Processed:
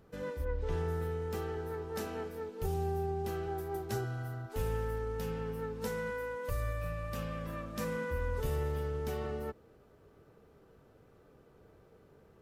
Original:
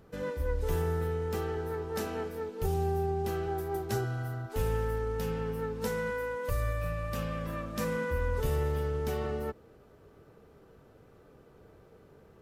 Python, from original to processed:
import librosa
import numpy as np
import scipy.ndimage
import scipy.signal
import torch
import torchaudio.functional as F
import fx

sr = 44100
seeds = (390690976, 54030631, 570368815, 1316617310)

y = fx.lowpass(x, sr, hz=fx.line((0.44, 2800.0), (0.87, 6400.0)), slope=12, at=(0.44, 0.87), fade=0.02)
y = y * 10.0 ** (-4.0 / 20.0)